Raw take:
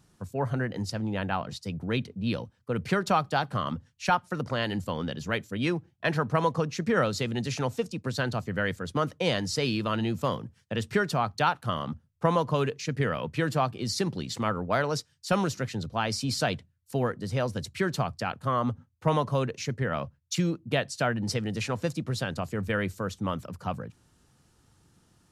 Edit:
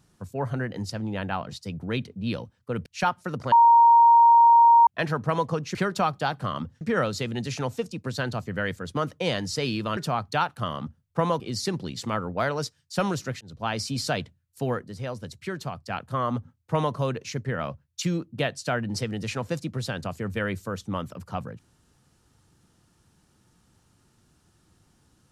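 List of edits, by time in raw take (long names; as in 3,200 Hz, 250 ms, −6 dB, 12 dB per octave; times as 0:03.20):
0:02.86–0:03.92: move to 0:06.81
0:04.58–0:05.93: beep over 933 Hz −11.5 dBFS
0:09.97–0:11.03: remove
0:12.46–0:13.73: remove
0:15.74–0:15.99: fade in
0:17.17–0:18.23: clip gain −5 dB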